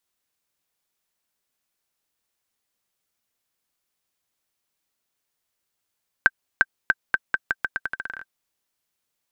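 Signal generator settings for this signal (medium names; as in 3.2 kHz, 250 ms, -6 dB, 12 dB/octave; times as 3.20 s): bouncing ball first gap 0.35 s, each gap 0.83, 1.56 kHz, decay 39 ms -2 dBFS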